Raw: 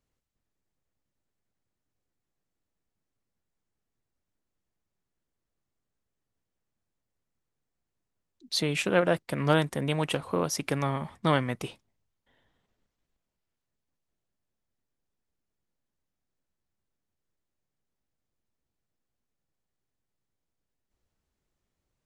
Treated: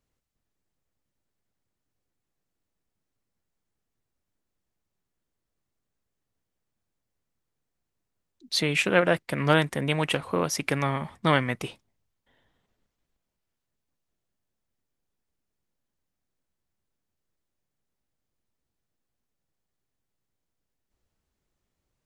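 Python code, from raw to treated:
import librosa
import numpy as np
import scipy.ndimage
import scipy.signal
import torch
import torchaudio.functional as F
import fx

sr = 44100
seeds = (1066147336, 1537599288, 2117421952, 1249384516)

y = fx.dynamic_eq(x, sr, hz=2100.0, q=1.3, threshold_db=-44.0, ratio=4.0, max_db=6)
y = y * 10.0 ** (1.5 / 20.0)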